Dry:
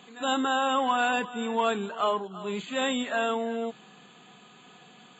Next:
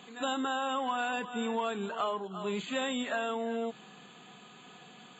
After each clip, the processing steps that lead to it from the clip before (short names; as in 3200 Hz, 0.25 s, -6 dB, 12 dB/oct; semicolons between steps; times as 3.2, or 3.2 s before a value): compressor, threshold -29 dBFS, peak gain reduction 8.5 dB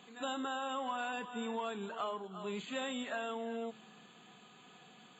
resonator 110 Hz, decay 1.6 s, mix 60%; gain +1.5 dB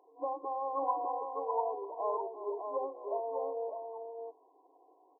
FFT band-pass 270–1100 Hz; echo 0.603 s -4 dB; upward expander 1.5:1, over -53 dBFS; gain +7.5 dB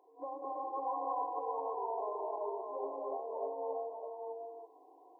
compressor 1.5:1, threshold -47 dBFS, peak gain reduction 7.5 dB; non-linear reverb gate 0.37 s rising, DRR -3.5 dB; gain -1.5 dB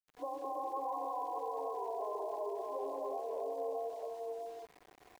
notch 900 Hz, Q 9.2; limiter -32.5 dBFS, peak gain reduction 7.5 dB; sample gate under -56.5 dBFS; gain +2 dB